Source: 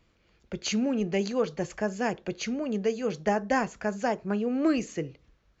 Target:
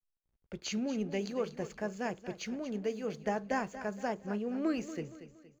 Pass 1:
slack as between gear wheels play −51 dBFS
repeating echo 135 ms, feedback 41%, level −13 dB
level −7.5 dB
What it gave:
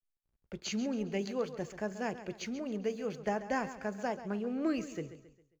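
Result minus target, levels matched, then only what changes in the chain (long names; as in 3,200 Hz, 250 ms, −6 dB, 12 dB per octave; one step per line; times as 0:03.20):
echo 99 ms early
change: repeating echo 234 ms, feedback 41%, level −13 dB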